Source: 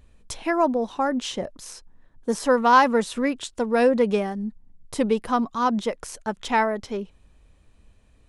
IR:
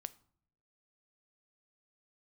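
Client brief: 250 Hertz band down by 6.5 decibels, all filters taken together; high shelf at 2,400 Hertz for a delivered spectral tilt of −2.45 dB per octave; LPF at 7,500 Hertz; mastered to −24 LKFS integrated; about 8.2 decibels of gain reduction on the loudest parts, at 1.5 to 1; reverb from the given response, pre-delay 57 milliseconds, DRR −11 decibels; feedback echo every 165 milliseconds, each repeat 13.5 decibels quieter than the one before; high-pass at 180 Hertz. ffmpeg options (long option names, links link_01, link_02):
-filter_complex "[0:a]highpass=180,lowpass=7500,equalizer=frequency=250:width_type=o:gain=-6,highshelf=frequency=2400:gain=-5,acompressor=threshold=-35dB:ratio=1.5,aecho=1:1:165|330:0.211|0.0444,asplit=2[link_01][link_02];[1:a]atrim=start_sample=2205,adelay=57[link_03];[link_02][link_03]afir=irnorm=-1:irlink=0,volume=15dB[link_04];[link_01][link_04]amix=inputs=2:normalize=0,volume=-4.5dB"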